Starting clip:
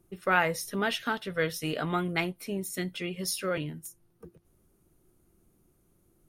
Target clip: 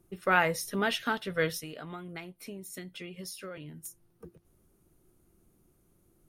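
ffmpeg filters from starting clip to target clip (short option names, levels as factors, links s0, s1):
-filter_complex "[0:a]asplit=3[s0][s1][s2];[s0]afade=t=out:st=1.6:d=0.02[s3];[s1]acompressor=threshold=0.01:ratio=6,afade=t=in:st=1.6:d=0.02,afade=t=out:st=3.83:d=0.02[s4];[s2]afade=t=in:st=3.83:d=0.02[s5];[s3][s4][s5]amix=inputs=3:normalize=0"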